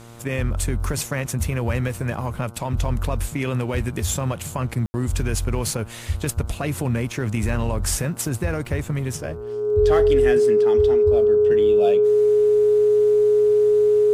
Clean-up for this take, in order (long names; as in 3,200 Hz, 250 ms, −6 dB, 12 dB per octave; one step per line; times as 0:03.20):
click removal
hum removal 116.6 Hz, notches 13
notch filter 420 Hz, Q 30
ambience match 0:04.86–0:04.94